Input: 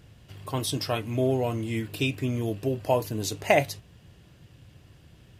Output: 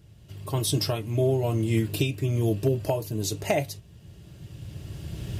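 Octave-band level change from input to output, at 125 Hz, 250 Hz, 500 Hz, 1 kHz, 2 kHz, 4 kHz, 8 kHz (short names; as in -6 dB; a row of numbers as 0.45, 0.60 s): +5.0, +1.0, -0.5, -5.0, -5.5, +1.0, +3.0 dB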